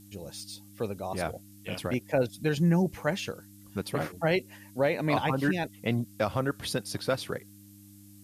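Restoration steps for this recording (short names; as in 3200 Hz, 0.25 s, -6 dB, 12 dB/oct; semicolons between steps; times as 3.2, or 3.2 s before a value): de-hum 100.9 Hz, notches 3; noise print and reduce 22 dB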